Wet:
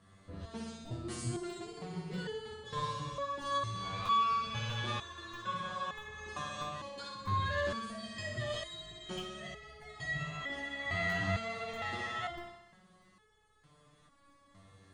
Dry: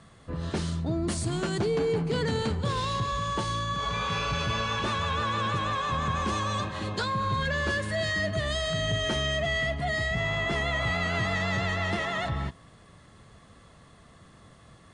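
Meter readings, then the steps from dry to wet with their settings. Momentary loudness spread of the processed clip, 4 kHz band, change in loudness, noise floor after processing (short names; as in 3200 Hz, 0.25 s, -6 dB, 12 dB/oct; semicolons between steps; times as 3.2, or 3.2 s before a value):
12 LU, -10.0 dB, -9.0 dB, -66 dBFS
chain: flutter echo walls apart 10.7 m, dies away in 0.96 s; crackling interface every 0.64 s, samples 256, repeat, from 0.85; stepped resonator 2.2 Hz 97–430 Hz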